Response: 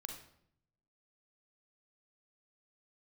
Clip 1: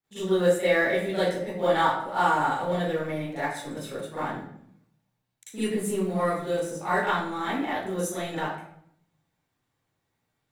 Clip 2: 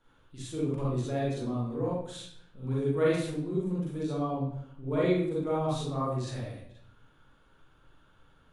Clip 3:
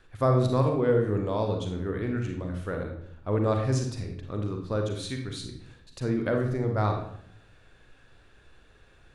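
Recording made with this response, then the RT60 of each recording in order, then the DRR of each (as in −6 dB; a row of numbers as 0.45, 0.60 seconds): 3; 0.65, 0.65, 0.70 seconds; −15.0, −6.5, 3.0 decibels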